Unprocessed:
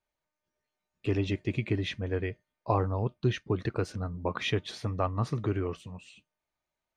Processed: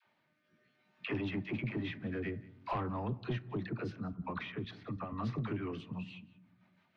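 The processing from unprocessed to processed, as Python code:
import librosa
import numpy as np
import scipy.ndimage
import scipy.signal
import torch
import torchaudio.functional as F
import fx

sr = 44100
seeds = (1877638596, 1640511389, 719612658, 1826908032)

p1 = fx.law_mismatch(x, sr, coded='mu', at=(1.26, 2.75))
p2 = scipy.signal.sosfilt(scipy.signal.butter(4, 140.0, 'highpass', fs=sr, output='sos'), p1)
p3 = fx.peak_eq(p2, sr, hz=480.0, db=-11.5, octaves=1.2)
p4 = fx.level_steps(p3, sr, step_db=14, at=(4.0, 5.07))
p5 = fx.rotary_switch(p4, sr, hz=0.6, then_hz=6.0, switch_at_s=4.15)
p6 = fx.dispersion(p5, sr, late='lows', ms=58.0, hz=540.0)
p7 = 10.0 ** (-31.0 / 20.0) * np.tanh(p6 / 10.0 ** (-31.0 / 20.0))
p8 = fx.air_absorb(p7, sr, metres=330.0)
p9 = p8 + fx.echo_single(p8, sr, ms=183, db=-24.0, dry=0)
p10 = fx.rev_fdn(p9, sr, rt60_s=0.79, lf_ratio=1.5, hf_ratio=0.45, size_ms=79.0, drr_db=17.0)
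p11 = fx.band_squash(p10, sr, depth_pct=70)
y = p11 * 10.0 ** (3.5 / 20.0)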